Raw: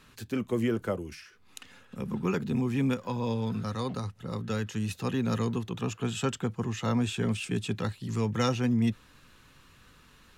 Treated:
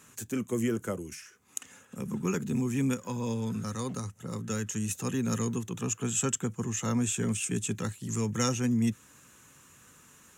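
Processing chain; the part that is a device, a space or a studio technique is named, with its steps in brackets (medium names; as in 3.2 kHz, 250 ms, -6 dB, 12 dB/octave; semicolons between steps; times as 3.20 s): dynamic bell 720 Hz, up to -6 dB, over -47 dBFS, Q 1.2; budget condenser microphone (high-pass 100 Hz; resonant high shelf 5.5 kHz +7.5 dB, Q 3)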